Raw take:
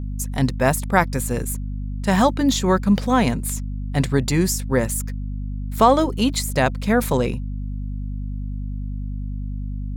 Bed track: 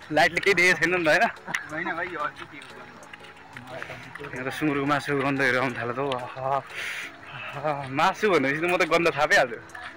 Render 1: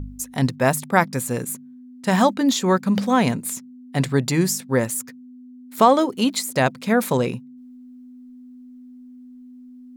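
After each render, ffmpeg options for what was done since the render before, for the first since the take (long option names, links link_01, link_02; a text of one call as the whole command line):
ffmpeg -i in.wav -af "bandreject=frequency=50:width_type=h:width=4,bandreject=frequency=100:width_type=h:width=4,bandreject=frequency=150:width_type=h:width=4,bandreject=frequency=200:width_type=h:width=4" out.wav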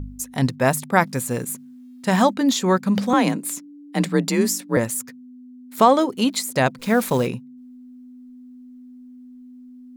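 ffmpeg -i in.wav -filter_complex "[0:a]asettb=1/sr,asplit=3[link_01][link_02][link_03];[link_01]atrim=end=1.064[link_04];[link_02]atrim=start=1.06:end=2.07,asetpts=PTS-STARTPTS,afade=type=in:duration=0.004:curve=qsin,afade=type=out:start_time=1.006:duration=0.004:curve=qsin,acrusher=bits=8:mode=log:mix=0:aa=0.000001[link_05];[link_03]atrim=start=2.066[link_06];[link_04][link_05]acrossfade=duration=0.004:curve1=hsin:curve2=qsin[link_07];[link_07][link_06]acrossfade=duration=0.004:curve1=qsin:curve2=hsin,asettb=1/sr,asplit=3[link_08][link_09][link_10];[link_08]atrim=end=3.134[link_11];[link_09]atrim=start=3.13:end=4.77,asetpts=PTS-STARTPTS,afade=type=in:duration=0.004:curve=qsin,afade=type=out:start_time=1.636:duration=0.004:curve=qsin,afreqshift=40[link_12];[link_10]atrim=start=4.766[link_13];[link_11][link_12]acrossfade=duration=0.004:curve1=hsin:curve2=qsin[link_14];[link_14][link_13]acrossfade=duration=0.004:curve1=qsin:curve2=hsin,asplit=3[link_15][link_16][link_17];[link_15]afade=type=out:start_time=6.78:duration=0.02[link_18];[link_16]acrusher=bits=7:dc=4:mix=0:aa=0.000001,afade=type=in:start_time=6.78:duration=0.02,afade=type=out:start_time=7.26:duration=0.02[link_19];[link_17]afade=type=in:start_time=7.26:duration=0.02[link_20];[link_18][link_19][link_20]amix=inputs=3:normalize=0" out.wav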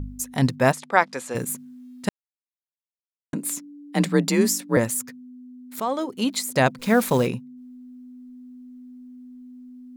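ffmpeg -i in.wav -filter_complex "[0:a]asplit=3[link_01][link_02][link_03];[link_01]afade=type=out:start_time=0.71:duration=0.02[link_04];[link_02]highpass=430,lowpass=5600,afade=type=in:start_time=0.71:duration=0.02,afade=type=out:start_time=1.34:duration=0.02[link_05];[link_03]afade=type=in:start_time=1.34:duration=0.02[link_06];[link_04][link_05][link_06]amix=inputs=3:normalize=0,asplit=4[link_07][link_08][link_09][link_10];[link_07]atrim=end=2.09,asetpts=PTS-STARTPTS,afade=type=out:start_time=2.086:duration=0.004:curve=hsin[link_11];[link_08]atrim=start=2.09:end=3.33,asetpts=PTS-STARTPTS,volume=0[link_12];[link_09]atrim=start=3.33:end=5.8,asetpts=PTS-STARTPTS,afade=type=in:duration=0.004:curve=hsin,afade=type=out:start_time=2.466:duration=0.004:curve=hsin:silence=0.177828[link_13];[link_10]atrim=start=5.8,asetpts=PTS-STARTPTS,afade=type=in:duration=0.79:silence=0.177828[link_14];[link_11][link_12][link_13][link_14]concat=n=4:v=0:a=1" out.wav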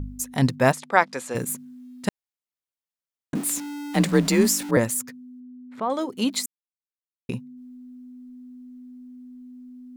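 ffmpeg -i in.wav -filter_complex "[0:a]asettb=1/sr,asplit=3[link_01][link_02][link_03];[link_01]atrim=end=3.354[link_04];[link_02]atrim=start=3.35:end=4.71,asetpts=PTS-STARTPTS,afade=type=in:duration=0.004:curve=qsin,afade=type=out:start_time=1.356:duration=0.004:curve=qsin,aeval=exprs='val(0)+0.5*0.0299*sgn(val(0))':channel_layout=same[link_05];[link_03]atrim=start=4.706[link_06];[link_04][link_05]acrossfade=duration=0.004:curve1=hsin:curve2=qsin[link_07];[link_07][link_06]acrossfade=duration=0.004:curve1=qsin:curve2=hsin,asettb=1/sr,asplit=3[link_08][link_09][link_10];[link_08]atrim=end=5.404[link_11];[link_09]atrim=start=5.4:end=5.9,asetpts=PTS-STARTPTS,afade=type=in:duration=0.004:curve=qsin,afade=type=out:start_time=0.496:duration=0.004:curve=qsin,lowpass=2000[link_12];[link_10]atrim=start=5.896[link_13];[link_11][link_12]acrossfade=duration=0.004:curve1=hsin:curve2=qsin[link_14];[link_14][link_13]acrossfade=duration=0.004:curve1=qsin:curve2=hsin,asplit=3[link_15][link_16][link_17];[link_15]atrim=end=6.46,asetpts=PTS-STARTPTS,afade=type=out:start_time=6.456:duration=0.004:curve=hsin[link_18];[link_16]atrim=start=6.46:end=7.29,asetpts=PTS-STARTPTS,volume=0[link_19];[link_17]atrim=start=7.29,asetpts=PTS-STARTPTS,afade=type=in:duration=0.004:curve=hsin[link_20];[link_18][link_19][link_20]concat=n=3:v=0:a=1" out.wav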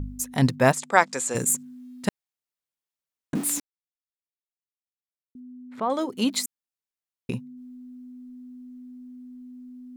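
ffmpeg -i in.wav -filter_complex "[0:a]asettb=1/sr,asplit=3[link_01][link_02][link_03];[link_01]atrim=end=0.764[link_04];[link_02]atrim=start=0.76:end=1.63,asetpts=PTS-STARTPTS,afade=type=in:duration=0.004:curve=qsin,afade=type=out:start_time=0.866:duration=0.004:curve=qsin,equalizer=frequency=7500:width_type=o:width=0.62:gain=13.5[link_05];[link_03]atrim=start=1.626[link_06];[link_04][link_05]acrossfade=duration=0.004:curve1=hsin:curve2=qsin[link_07];[link_07][link_06]acrossfade=duration=0.004:curve1=qsin:curve2=hsin,asplit=3[link_08][link_09][link_10];[link_08]atrim=end=3.6,asetpts=PTS-STARTPTS,afade=type=out:start_time=3.596:duration=0.004:curve=hsin[link_11];[link_09]atrim=start=3.6:end=5.35,asetpts=PTS-STARTPTS,volume=0[link_12];[link_10]atrim=start=5.35,asetpts=PTS-STARTPTS,afade=type=in:duration=0.004:curve=hsin[link_13];[link_11][link_12][link_13]concat=n=3:v=0:a=1" out.wav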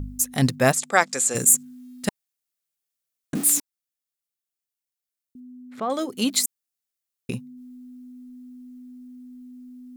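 ffmpeg -i in.wav -af "highshelf=frequency=4800:gain=9.5,bandreject=frequency=950:width=6.7" out.wav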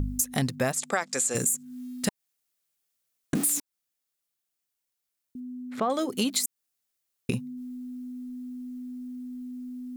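ffmpeg -i in.wav -filter_complex "[0:a]asplit=2[link_01][link_02];[link_02]alimiter=limit=-13dB:level=0:latency=1:release=33,volume=-2.5dB[link_03];[link_01][link_03]amix=inputs=2:normalize=0,acompressor=threshold=-23dB:ratio=10" out.wav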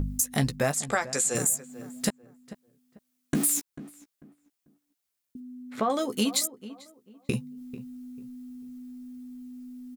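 ffmpeg -i in.wav -filter_complex "[0:a]asplit=2[link_01][link_02];[link_02]adelay=14,volume=-8dB[link_03];[link_01][link_03]amix=inputs=2:normalize=0,asplit=2[link_04][link_05];[link_05]adelay=443,lowpass=frequency=1600:poles=1,volume=-15dB,asplit=2[link_06][link_07];[link_07]adelay=443,lowpass=frequency=1600:poles=1,volume=0.28,asplit=2[link_08][link_09];[link_09]adelay=443,lowpass=frequency=1600:poles=1,volume=0.28[link_10];[link_04][link_06][link_08][link_10]amix=inputs=4:normalize=0" out.wav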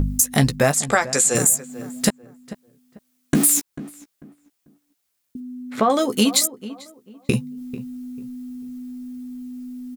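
ffmpeg -i in.wav -af "volume=8.5dB" out.wav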